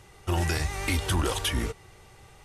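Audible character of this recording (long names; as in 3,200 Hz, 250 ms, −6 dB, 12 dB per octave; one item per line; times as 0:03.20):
background noise floor −53 dBFS
spectral slope −4.0 dB per octave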